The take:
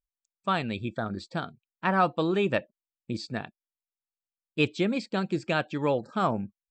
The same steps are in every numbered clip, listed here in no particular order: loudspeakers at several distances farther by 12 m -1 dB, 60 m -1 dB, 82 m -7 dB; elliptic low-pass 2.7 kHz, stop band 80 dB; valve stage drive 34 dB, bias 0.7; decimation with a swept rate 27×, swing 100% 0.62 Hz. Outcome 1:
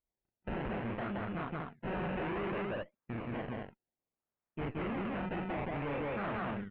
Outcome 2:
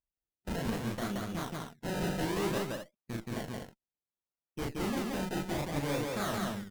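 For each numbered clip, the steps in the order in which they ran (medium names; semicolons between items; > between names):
decimation with a swept rate > loudspeakers at several distances > valve stage > elliptic low-pass; elliptic low-pass > decimation with a swept rate > valve stage > loudspeakers at several distances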